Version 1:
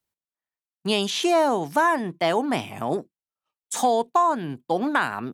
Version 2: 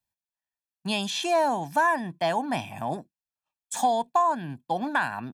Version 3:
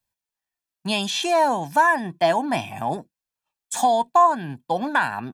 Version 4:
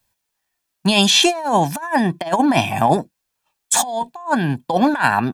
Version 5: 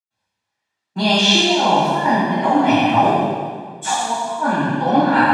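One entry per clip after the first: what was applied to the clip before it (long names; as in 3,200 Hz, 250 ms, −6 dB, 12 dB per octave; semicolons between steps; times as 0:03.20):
comb filter 1.2 ms, depth 66%; level −5 dB
flanger 0.62 Hz, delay 1.8 ms, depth 1.4 ms, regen +70%; level +9 dB
compressor whose output falls as the input rises −24 dBFS, ratio −0.5; level +8 dB
band-pass filter 130–4,900 Hz; convolution reverb RT60 1.8 s, pre-delay 104 ms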